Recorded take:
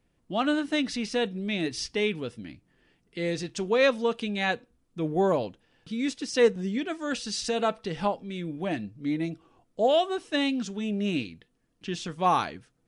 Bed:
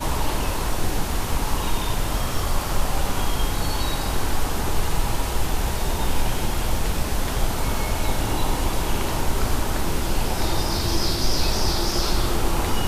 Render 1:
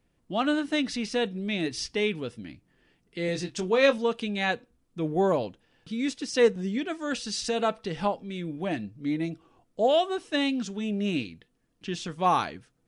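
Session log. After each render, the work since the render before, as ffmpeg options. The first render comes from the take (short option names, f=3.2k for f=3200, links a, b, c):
-filter_complex "[0:a]asettb=1/sr,asplit=3[a][b][c];[a]atrim=end=3.264[d];[b]atrim=start=3.26:end=3.98,asetpts=PTS-STARTPTS,afade=t=in:d=0.004:c=qsin,afade=t=out:st=0.716:d=0.004:c=qsin,asplit=2[e][f];[f]adelay=22,volume=-7dB[g];[e][g]amix=inputs=2:normalize=0,atrim=end_sample=31752[h];[c]atrim=start=3.976[i];[d][h]acrossfade=d=0.004:c1=hsin:c2=qsin[j];[j][i]acrossfade=d=0.004:c1=qsin:c2=hsin"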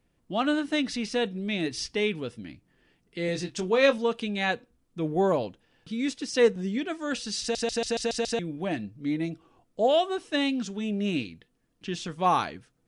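-filter_complex "[0:a]asplit=8[a][b][c][d][e][f][g][h];[a]atrim=end=7.552[i];[b]atrim=start=7.408:end=7.552[j];[c]atrim=start=7.408:end=7.552[k];[d]atrim=start=7.408:end=7.552[l];[e]atrim=start=7.408:end=7.552[m];[f]atrim=start=7.408:end=7.552[n];[g]atrim=start=7.408:end=7.552[o];[h]atrim=start=8.388[p];[i][j]acrossfade=d=0.004:c1=hsin:c2=hsin[q];[q][k]acrossfade=d=0.004:c1=hsin:c2=hsin[r];[r][l]acrossfade=d=0.004:c1=hsin:c2=hsin[s];[s][m]acrossfade=d=0.004:c1=hsin:c2=hsin[t];[t][n]acrossfade=d=0.004:c1=hsin:c2=hsin[u];[u][o]acrossfade=d=0.004:c1=hsin:c2=hsin[v];[v][p]acrossfade=d=0.004:c1=hsin:c2=hsin"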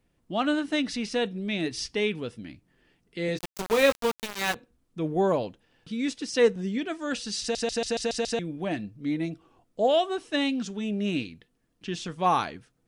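-filter_complex "[0:a]asplit=3[a][b][c];[a]afade=t=out:st=3.37:d=0.02[d];[b]aeval=exprs='val(0)*gte(abs(val(0)),0.0531)':c=same,afade=t=in:st=3.37:d=0.02,afade=t=out:st=4.54:d=0.02[e];[c]afade=t=in:st=4.54:d=0.02[f];[d][e][f]amix=inputs=3:normalize=0"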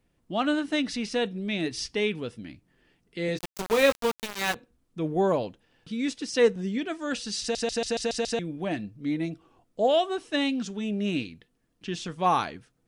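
-af anull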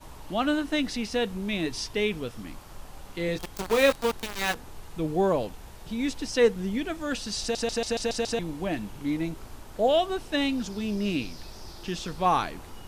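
-filter_complex "[1:a]volume=-21.5dB[a];[0:a][a]amix=inputs=2:normalize=0"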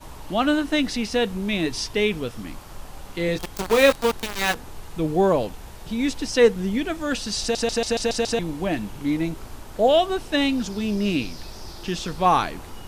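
-af "volume=5dB"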